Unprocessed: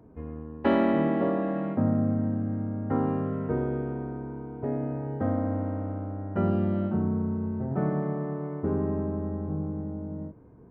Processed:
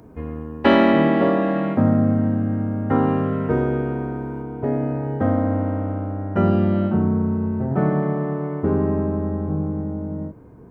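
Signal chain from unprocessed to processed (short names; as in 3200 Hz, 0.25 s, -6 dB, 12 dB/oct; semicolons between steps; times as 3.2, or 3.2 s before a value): high shelf 2100 Hz +11.5 dB, from 4.42 s +6.5 dB; gain +7.5 dB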